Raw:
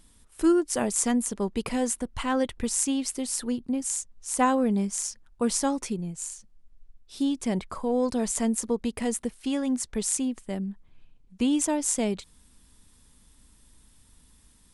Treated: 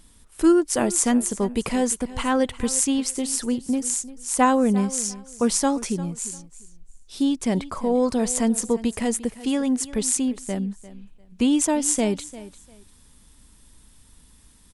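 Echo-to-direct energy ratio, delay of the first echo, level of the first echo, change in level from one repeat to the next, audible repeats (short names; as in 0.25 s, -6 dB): -17.0 dB, 0.348 s, -17.0 dB, -13.0 dB, 2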